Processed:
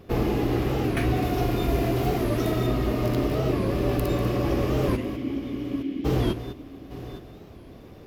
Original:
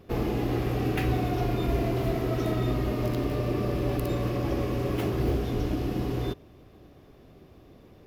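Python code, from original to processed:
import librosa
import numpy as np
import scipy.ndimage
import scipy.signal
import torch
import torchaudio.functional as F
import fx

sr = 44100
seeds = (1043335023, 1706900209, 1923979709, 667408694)

y = fx.vowel_filter(x, sr, vowel='i', at=(4.96, 6.04), fade=0.02)
y = y + 10.0 ** (-11.5 / 20.0) * np.pad(y, (int(195 * sr / 1000.0), 0))[:len(y)]
y = fx.rider(y, sr, range_db=3, speed_s=0.5)
y = fx.high_shelf(y, sr, hz=5700.0, db=5.5, at=(1.22, 2.67))
y = y + 10.0 ** (-14.5 / 20.0) * np.pad(y, (int(856 * sr / 1000.0), 0))[:len(y)]
y = fx.record_warp(y, sr, rpm=45.0, depth_cents=160.0)
y = y * 10.0 ** (4.0 / 20.0)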